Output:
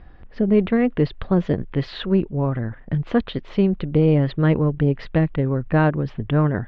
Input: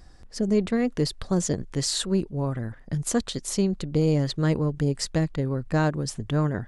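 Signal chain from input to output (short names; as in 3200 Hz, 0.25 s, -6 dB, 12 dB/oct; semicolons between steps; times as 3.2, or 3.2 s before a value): steep low-pass 3200 Hz 36 dB/oct; gain +5.5 dB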